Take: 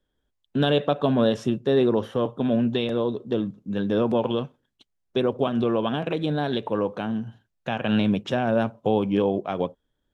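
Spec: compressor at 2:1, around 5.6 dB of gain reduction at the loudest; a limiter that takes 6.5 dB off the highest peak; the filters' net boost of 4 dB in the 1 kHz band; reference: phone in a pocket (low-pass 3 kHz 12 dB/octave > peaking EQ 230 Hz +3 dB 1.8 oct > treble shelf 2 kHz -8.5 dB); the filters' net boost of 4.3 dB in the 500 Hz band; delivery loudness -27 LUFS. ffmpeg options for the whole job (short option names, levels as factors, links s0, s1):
-af "equalizer=f=500:t=o:g=3,equalizer=f=1000:t=o:g=5.5,acompressor=threshold=0.0631:ratio=2,alimiter=limit=0.141:level=0:latency=1,lowpass=3000,equalizer=f=230:t=o:w=1.8:g=3,highshelf=f=2000:g=-8.5,volume=0.944"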